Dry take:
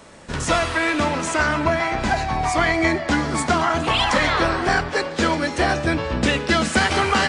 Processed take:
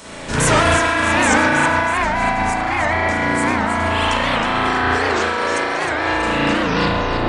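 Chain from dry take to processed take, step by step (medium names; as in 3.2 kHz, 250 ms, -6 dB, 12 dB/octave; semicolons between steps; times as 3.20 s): tape stop on the ending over 0.86 s; time-frequency box 4.98–6.22 s, 310–9500 Hz +12 dB; peak limiter -12.5 dBFS, peak gain reduction 15.5 dB; treble shelf 2.5 kHz +10 dB; spring tank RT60 2.8 s, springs 35 ms, chirp 20 ms, DRR -10 dB; dynamic bell 3.7 kHz, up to -7 dB, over -37 dBFS, Q 0.93; compressor with a negative ratio -15 dBFS, ratio -0.5; on a send: two-band feedback delay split 860 Hz, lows 136 ms, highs 318 ms, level -7.5 dB; on the sum: warped record 78 rpm, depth 160 cents; trim -2 dB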